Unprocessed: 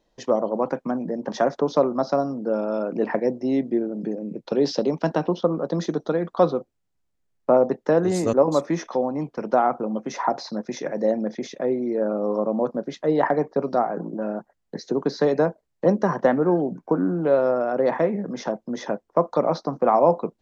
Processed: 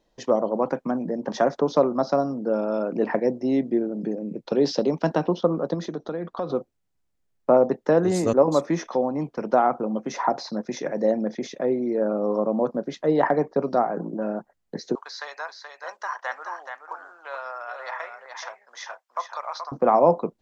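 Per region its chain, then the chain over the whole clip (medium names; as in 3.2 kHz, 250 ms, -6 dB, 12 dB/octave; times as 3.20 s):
5.74–6.50 s: compression 3:1, threshold -27 dBFS + distance through air 60 m
14.95–19.72 s: high-pass 1 kHz 24 dB/octave + delay 427 ms -6.5 dB
whole clip: none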